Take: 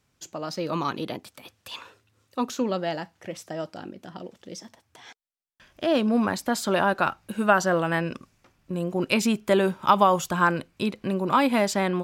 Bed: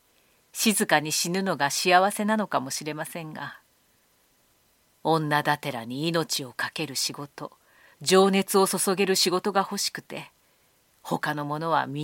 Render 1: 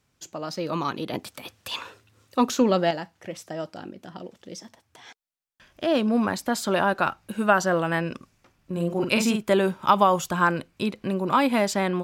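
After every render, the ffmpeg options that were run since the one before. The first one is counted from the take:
ffmpeg -i in.wav -filter_complex "[0:a]asettb=1/sr,asplit=3[link_01][link_02][link_03];[link_01]atrim=end=1.134[link_04];[link_02]atrim=start=1.13:end=2.91,asetpts=PTS-STARTPTS,afade=type=in:duration=0.004:curve=qsin,afade=type=out:start_time=1.776:duration=0.004:curve=qsin,acontrast=56[link_05];[link_03]atrim=start=2.906[link_06];[link_04][link_05]acrossfade=duration=0.004:curve1=hsin:curve2=qsin[link_07];[link_07][link_06]acrossfade=duration=0.004:curve1=qsin:curve2=hsin,asettb=1/sr,asplit=3[link_08][link_09][link_10];[link_08]atrim=end=8.724[link_11];[link_09]atrim=start=8.72:end=9.43,asetpts=PTS-STARTPTS,afade=type=in:duration=0.004:curve=qsin,afade=type=out:start_time=0.706:duration=0.004:curve=qsin,asplit=2[link_12][link_13];[link_13]adelay=47,volume=-5dB[link_14];[link_12][link_14]amix=inputs=2:normalize=0,atrim=end_sample=31311[link_15];[link_10]atrim=start=9.426[link_16];[link_11][link_15]acrossfade=duration=0.004:curve1=hsin:curve2=qsin[link_17];[link_17][link_16]acrossfade=duration=0.004:curve1=qsin:curve2=hsin" out.wav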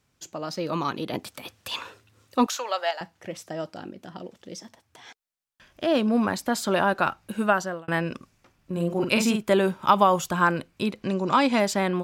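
ffmpeg -i in.wav -filter_complex "[0:a]asettb=1/sr,asplit=3[link_01][link_02][link_03];[link_01]atrim=end=2.464[link_04];[link_02]atrim=start=2.46:end=3.01,asetpts=PTS-STARTPTS,afade=type=in:duration=0.004:curve=qsin,afade=type=out:start_time=0.546:duration=0.004:curve=qsin,highpass=frequency=680:width=0.5412,highpass=frequency=680:width=1.3066[link_05];[link_03]atrim=start=3.006[link_06];[link_04][link_05]acrossfade=duration=0.004:curve1=hsin:curve2=qsin[link_07];[link_07][link_06]acrossfade=duration=0.004:curve1=qsin:curve2=hsin,asettb=1/sr,asplit=3[link_08][link_09][link_10];[link_08]atrim=end=11.034[link_11];[link_09]atrim=start=11.03:end=11.6,asetpts=PTS-STARTPTS,afade=type=in:duration=0.004:curve=qsin,afade=type=out:start_time=0.566:duration=0.004:curve=qsin,lowpass=frequency=6300:width_type=q:width=3.6[link_12];[link_10]atrim=start=11.596[link_13];[link_11][link_12]acrossfade=duration=0.004:curve1=hsin:curve2=qsin[link_14];[link_14][link_13]acrossfade=duration=0.004:curve1=qsin:curve2=hsin,asplit=2[link_15][link_16];[link_15]atrim=end=7.88,asetpts=PTS-STARTPTS,afade=type=out:start_time=7.41:duration=0.47[link_17];[link_16]atrim=start=7.88,asetpts=PTS-STARTPTS,afade=type=in:duration=0.004:curve=hsin[link_18];[link_17][link_18]concat=n=2:v=0:a=1" out.wav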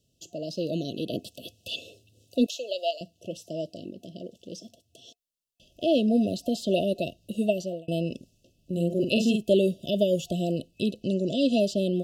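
ffmpeg -i in.wav -filter_complex "[0:a]acrossover=split=4700[link_01][link_02];[link_02]acompressor=threshold=-45dB:ratio=4:attack=1:release=60[link_03];[link_01][link_03]amix=inputs=2:normalize=0,afftfilt=real='re*(1-between(b*sr/4096,710,2600))':imag='im*(1-between(b*sr/4096,710,2600))':win_size=4096:overlap=0.75" out.wav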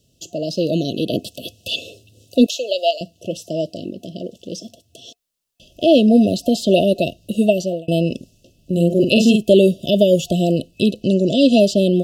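ffmpeg -i in.wav -af "volume=10.5dB,alimiter=limit=-2dB:level=0:latency=1" out.wav

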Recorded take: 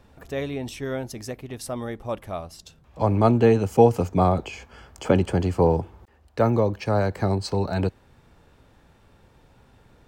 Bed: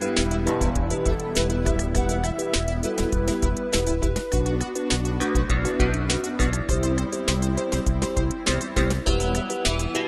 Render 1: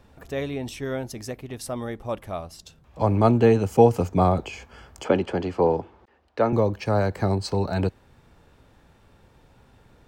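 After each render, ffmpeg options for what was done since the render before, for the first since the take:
ffmpeg -i in.wav -filter_complex "[0:a]asettb=1/sr,asplit=3[link_01][link_02][link_03];[link_01]atrim=end=5.044[link_04];[link_02]atrim=start=5.04:end=6.53,asetpts=PTS-STARTPTS,afade=type=in:duration=0.004:curve=qsin,afade=type=out:start_time=1.486:duration=0.004:curve=qsin,acrossover=split=210 5400:gain=0.251 1 0.141[link_05][link_06][link_07];[link_05][link_06][link_07]amix=inputs=3:normalize=0[link_08];[link_03]atrim=start=6.526[link_09];[link_04][link_08]acrossfade=duration=0.004:curve1=hsin:curve2=qsin[link_10];[link_10][link_09]acrossfade=duration=0.004:curve1=qsin:curve2=hsin" out.wav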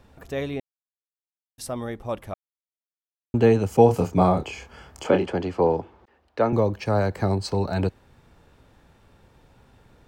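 ffmpeg -i in.wav -filter_complex "[0:a]asettb=1/sr,asplit=3[link_01][link_02][link_03];[link_01]atrim=end=3.864[link_04];[link_02]atrim=start=3.86:end=5.28,asetpts=PTS-STARTPTS,afade=type=in:duration=0.004:curve=qsin,afade=type=out:start_time=1.416:duration=0.004:curve=qsin,asplit=2[link_05][link_06];[link_06]adelay=28,volume=-5dB[link_07];[link_05][link_07]amix=inputs=2:normalize=0,atrim=end_sample=62622[link_08];[link_03]atrim=start=5.276[link_09];[link_04][link_08]acrossfade=duration=0.004:curve1=hsin:curve2=qsin[link_10];[link_10][link_09]acrossfade=duration=0.004:curve1=qsin:curve2=hsin,asplit=5[link_11][link_12][link_13][link_14][link_15];[link_11]atrim=end=0.6,asetpts=PTS-STARTPTS,afade=type=out:start_time=0.596:duration=0.004:curve=hsin[link_16];[link_12]atrim=start=0.6:end=1.58,asetpts=PTS-STARTPTS,volume=0[link_17];[link_13]atrim=start=1.58:end=2.34,asetpts=PTS-STARTPTS,afade=type=in:duration=0.004:curve=hsin,afade=type=out:start_time=0.756:duration=0.004:curve=hsin[link_18];[link_14]atrim=start=2.34:end=3.34,asetpts=PTS-STARTPTS,volume=0[link_19];[link_15]atrim=start=3.34,asetpts=PTS-STARTPTS,afade=type=in:duration=0.004:curve=hsin[link_20];[link_16][link_17][link_18][link_19][link_20]concat=n=5:v=0:a=1" out.wav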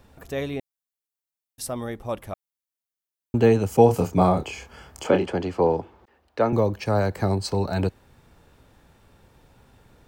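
ffmpeg -i in.wav -af "highshelf=frequency=8600:gain=8" out.wav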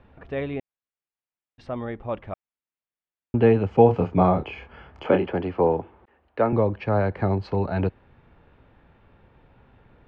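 ffmpeg -i in.wav -af "lowpass=frequency=2900:width=0.5412,lowpass=frequency=2900:width=1.3066" out.wav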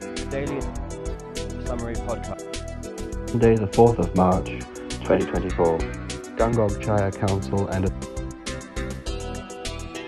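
ffmpeg -i in.wav -i bed.wav -filter_complex "[1:a]volume=-8.5dB[link_01];[0:a][link_01]amix=inputs=2:normalize=0" out.wav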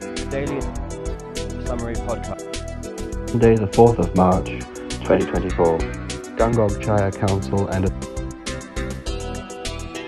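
ffmpeg -i in.wav -af "volume=3dB" out.wav

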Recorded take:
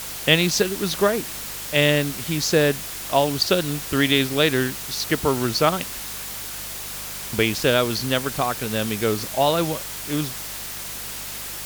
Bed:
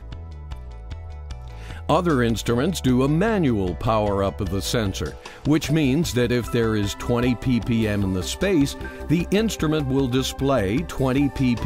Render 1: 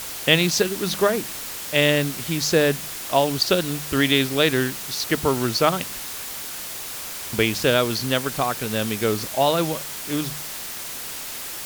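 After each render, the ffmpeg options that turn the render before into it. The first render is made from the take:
ffmpeg -i in.wav -af "bandreject=frequency=50:width_type=h:width=4,bandreject=frequency=100:width_type=h:width=4,bandreject=frequency=150:width_type=h:width=4,bandreject=frequency=200:width_type=h:width=4" out.wav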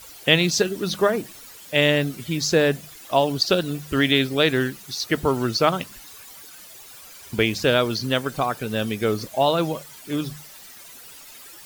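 ffmpeg -i in.wav -af "afftdn=noise_reduction=14:noise_floor=-33" out.wav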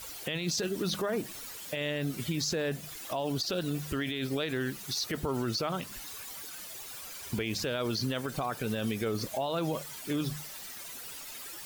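ffmpeg -i in.wav -af "acompressor=threshold=-27dB:ratio=2,alimiter=limit=-23dB:level=0:latency=1:release=20" out.wav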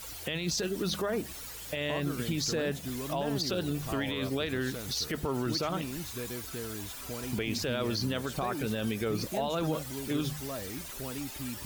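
ffmpeg -i in.wav -i bed.wav -filter_complex "[1:a]volume=-19dB[link_01];[0:a][link_01]amix=inputs=2:normalize=0" out.wav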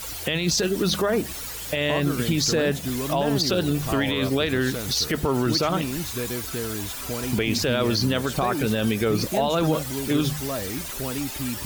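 ffmpeg -i in.wav -af "volume=9dB" out.wav

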